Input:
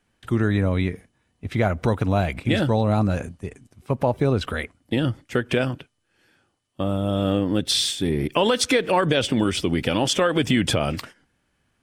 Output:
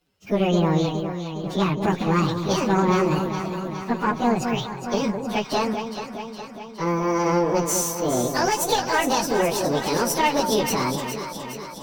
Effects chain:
phase-vocoder pitch shift without resampling +9.5 semitones
tube saturation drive 15 dB, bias 0.6
delay that swaps between a low-pass and a high-pass 207 ms, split 1,000 Hz, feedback 78%, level −6 dB
level +4.5 dB

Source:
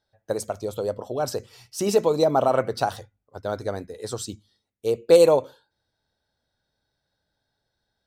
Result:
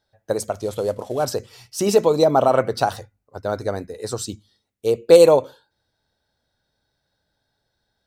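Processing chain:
0:00.58–0:01.25: variable-slope delta modulation 64 kbit/s
0:02.93–0:04.22: notch filter 3,300 Hz, Q 6
level +4 dB

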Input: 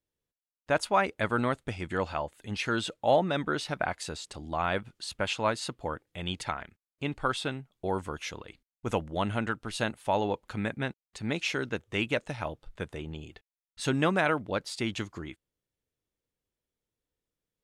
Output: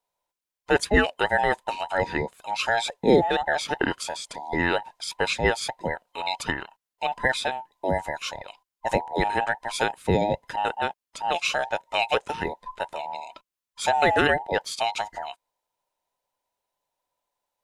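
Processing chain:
frequency inversion band by band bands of 1,000 Hz
level +5.5 dB

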